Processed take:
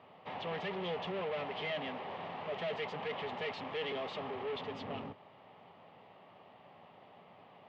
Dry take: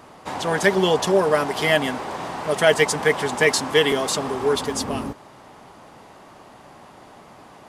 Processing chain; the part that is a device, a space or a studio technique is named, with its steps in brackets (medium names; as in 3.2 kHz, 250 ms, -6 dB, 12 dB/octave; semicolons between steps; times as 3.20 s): guitar amplifier (valve stage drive 27 dB, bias 0.65; tone controls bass -9 dB, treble -8 dB; cabinet simulation 90–3600 Hz, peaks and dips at 100 Hz +9 dB, 170 Hz +7 dB, 320 Hz -8 dB, 1 kHz -4 dB, 1.5 kHz -10 dB, 3 kHz +4 dB); trim -6 dB